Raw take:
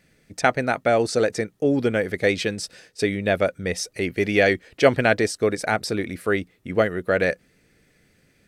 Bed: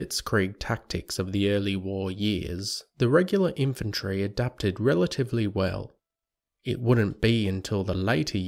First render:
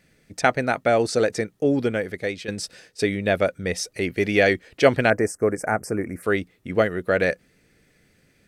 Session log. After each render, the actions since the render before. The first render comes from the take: 1.70–2.48 s: fade out, to -12 dB; 5.10–6.23 s: Butterworth band-stop 3.6 kHz, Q 0.7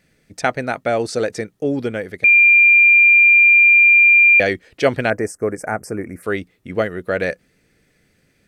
2.24–4.40 s: bleep 2.39 kHz -7 dBFS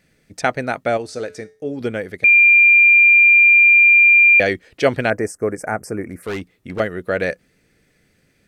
0.97–1.81 s: feedback comb 87 Hz, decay 0.38 s, harmonics odd; 6.09–6.80 s: hard clipper -22 dBFS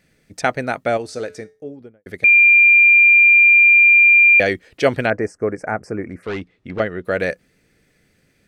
1.26–2.06 s: studio fade out; 5.06–7.05 s: low-pass 4.4 kHz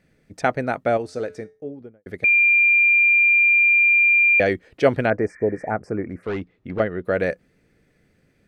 5.32–5.68 s: spectral replace 1–2.4 kHz before; treble shelf 2.2 kHz -10 dB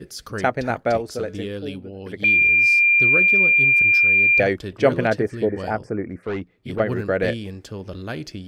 add bed -6 dB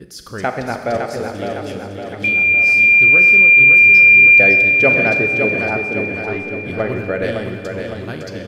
feedback delay 559 ms, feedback 53%, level -6 dB; Schroeder reverb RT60 2 s, combs from 30 ms, DRR 6.5 dB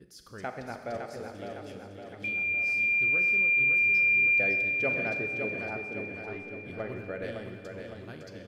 trim -16 dB

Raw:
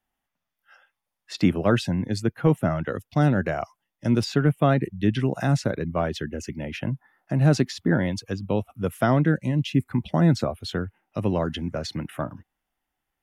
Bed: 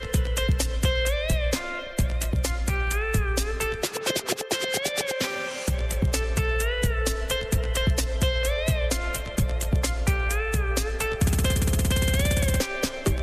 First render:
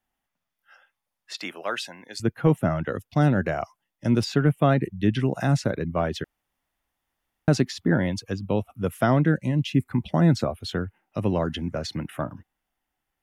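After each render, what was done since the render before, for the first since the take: 1.34–2.20 s: Bessel high-pass 990 Hz; 6.24–7.48 s: room tone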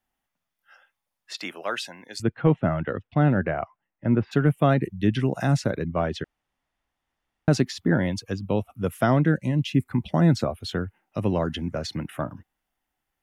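2.22–4.31 s: low-pass 4.3 kHz -> 2 kHz 24 dB/octave; 5.85–7.51 s: distance through air 55 m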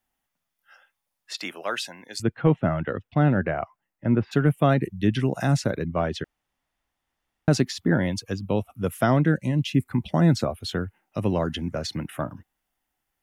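treble shelf 5.3 kHz +4.5 dB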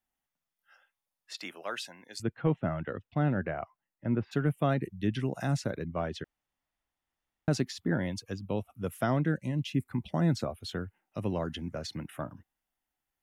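trim -8 dB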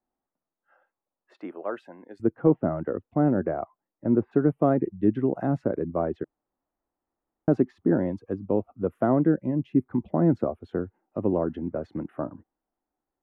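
FFT filter 140 Hz 0 dB, 330 Hz +12 dB, 1.2 kHz +2 dB, 5.2 kHz -29 dB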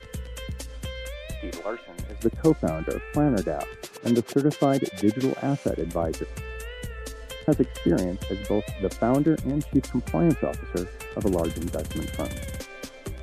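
add bed -11.5 dB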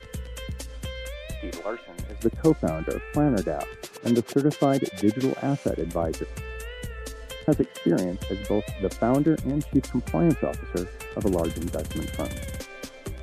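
7.61–8.12 s: high-pass 230 Hz -> 92 Hz 24 dB/octave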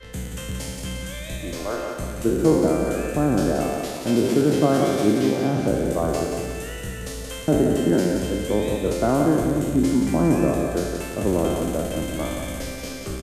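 spectral sustain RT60 1.32 s; feedback delay 177 ms, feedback 48%, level -6 dB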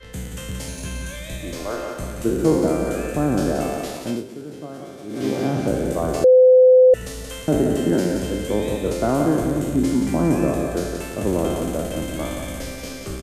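0.68–1.16 s: rippled EQ curve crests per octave 1.5, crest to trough 9 dB; 3.88–5.46 s: dip -16.5 dB, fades 0.37 s equal-power; 6.24–6.94 s: bleep 510 Hz -7.5 dBFS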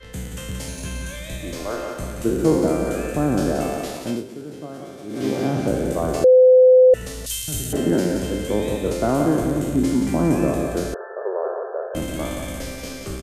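7.26–7.73 s: FFT filter 110 Hz 0 dB, 230 Hz -16 dB, 600 Hz -22 dB, 2 kHz -5 dB, 3.2 kHz +7 dB, 12 kHz +14 dB; 10.94–11.95 s: brick-wall FIR band-pass 370–1800 Hz

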